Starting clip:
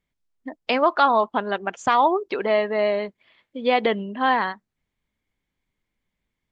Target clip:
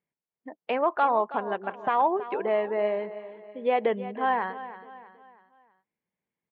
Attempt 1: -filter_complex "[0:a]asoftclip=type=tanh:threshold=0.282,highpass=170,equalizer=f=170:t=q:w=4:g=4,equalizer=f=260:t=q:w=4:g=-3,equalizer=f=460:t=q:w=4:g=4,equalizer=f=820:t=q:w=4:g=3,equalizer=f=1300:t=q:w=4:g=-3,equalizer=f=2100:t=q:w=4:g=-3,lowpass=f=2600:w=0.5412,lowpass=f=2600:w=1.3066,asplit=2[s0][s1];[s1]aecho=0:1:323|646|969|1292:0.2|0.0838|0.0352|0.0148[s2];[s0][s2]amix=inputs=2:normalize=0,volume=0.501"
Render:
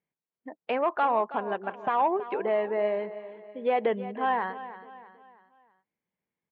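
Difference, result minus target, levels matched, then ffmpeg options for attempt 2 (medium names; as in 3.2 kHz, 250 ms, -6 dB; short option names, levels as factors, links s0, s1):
saturation: distortion +18 dB
-filter_complex "[0:a]asoftclip=type=tanh:threshold=0.944,highpass=170,equalizer=f=170:t=q:w=4:g=4,equalizer=f=260:t=q:w=4:g=-3,equalizer=f=460:t=q:w=4:g=4,equalizer=f=820:t=q:w=4:g=3,equalizer=f=1300:t=q:w=4:g=-3,equalizer=f=2100:t=q:w=4:g=-3,lowpass=f=2600:w=0.5412,lowpass=f=2600:w=1.3066,asplit=2[s0][s1];[s1]aecho=0:1:323|646|969|1292:0.2|0.0838|0.0352|0.0148[s2];[s0][s2]amix=inputs=2:normalize=0,volume=0.501"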